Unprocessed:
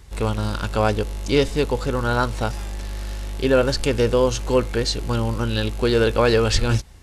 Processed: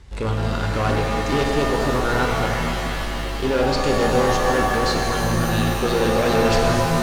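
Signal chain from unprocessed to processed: hard clipper -18 dBFS, distortion -9 dB; distance through air 63 m; pitch-shifted reverb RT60 3 s, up +7 st, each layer -2 dB, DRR 1 dB

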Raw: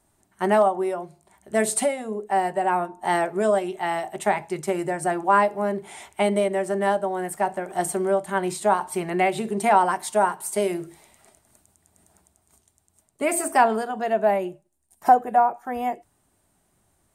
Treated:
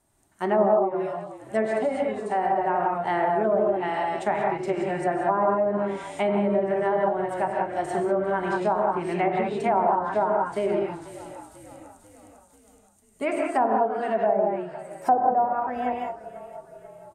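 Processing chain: frequency-shifting echo 491 ms, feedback 56%, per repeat -35 Hz, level -18.5 dB; gated-style reverb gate 210 ms rising, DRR -1 dB; low-pass that closes with the level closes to 850 Hz, closed at -13.5 dBFS; trim -3.5 dB

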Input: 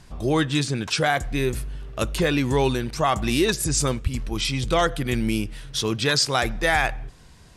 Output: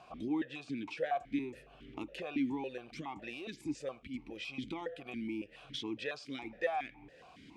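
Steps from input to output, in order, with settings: compression 10:1, threshold -35 dBFS, peak gain reduction 19 dB; stepped vowel filter 7.2 Hz; trim +11 dB

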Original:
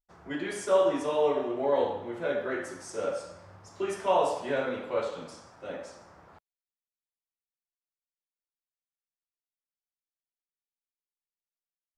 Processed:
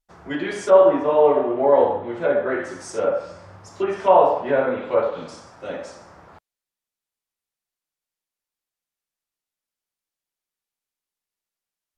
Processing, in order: dynamic bell 720 Hz, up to +4 dB, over -34 dBFS, Q 0.94; low-pass that closes with the level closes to 1.9 kHz, closed at -25 dBFS; trim +7.5 dB

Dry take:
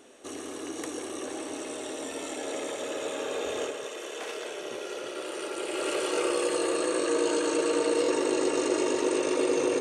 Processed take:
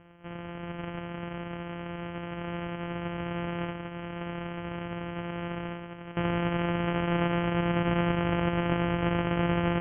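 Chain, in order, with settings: sorted samples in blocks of 256 samples; Chebyshev low-pass 3.2 kHz, order 10; 3.94–6.17 s: compressor with a negative ratio -35 dBFS, ratio -0.5

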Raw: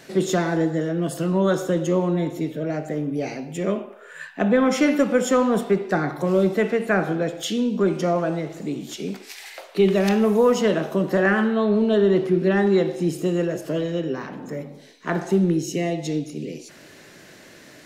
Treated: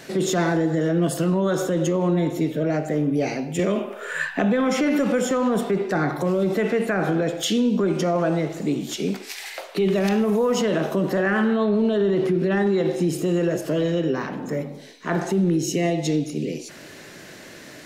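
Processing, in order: peak limiter -18 dBFS, peak gain reduction 10 dB; 3.59–5.31 s: three bands compressed up and down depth 70%; trim +4.5 dB

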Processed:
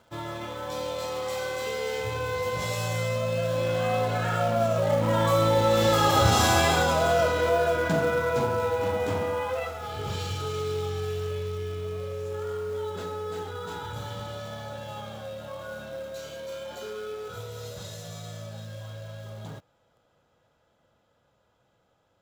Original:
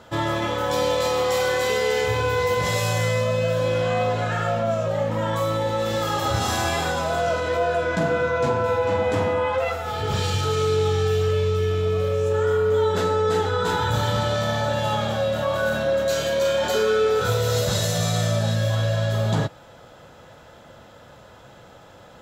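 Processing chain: Doppler pass-by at 6.09 s, 6 m/s, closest 7 m; band-stop 1.8 kHz, Q 17; in parallel at -8 dB: companded quantiser 4-bit

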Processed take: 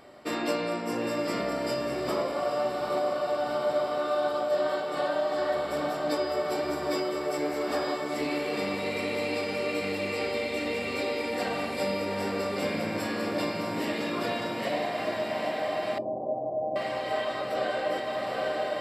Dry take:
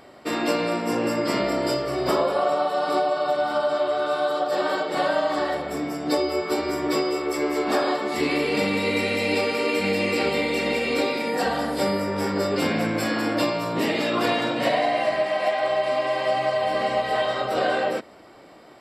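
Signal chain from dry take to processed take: echo that smears into a reverb 823 ms, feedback 68%, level -5.5 dB; gain riding within 5 dB 0.5 s; 15.98–16.76 s: steep low-pass 820 Hz 48 dB/octave; feedback comb 600 Hz, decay 0.18 s, harmonics all, mix 50%; trim -3 dB

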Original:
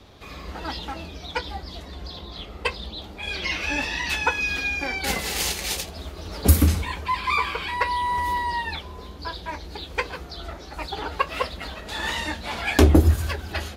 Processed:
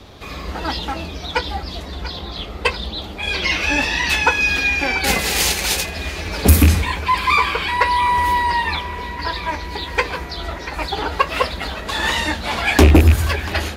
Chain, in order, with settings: rattle on loud lows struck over -14 dBFS, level -13 dBFS; saturation -11 dBFS, distortion -13 dB; band-passed feedback delay 688 ms, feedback 75%, band-pass 1.8 kHz, level -12 dB; trim +8 dB

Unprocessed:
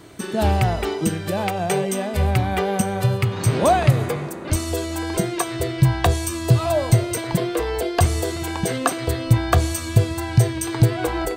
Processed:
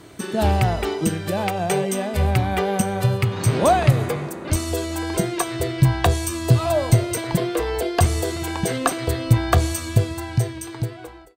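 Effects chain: fade out at the end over 1.69 s; Chebyshev shaper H 2 -20 dB, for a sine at -3.5 dBFS

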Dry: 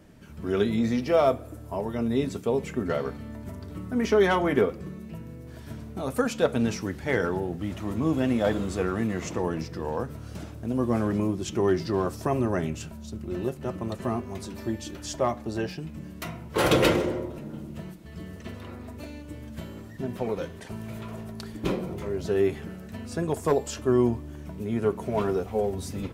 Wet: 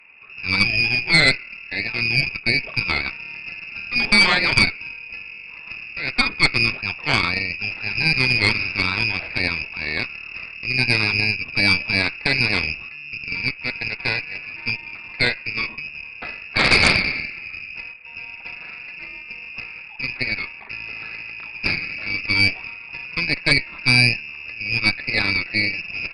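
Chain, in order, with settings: frequency inversion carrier 2.7 kHz; Chebyshev shaper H 4 -7 dB, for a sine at -8.5 dBFS; trim +3.5 dB

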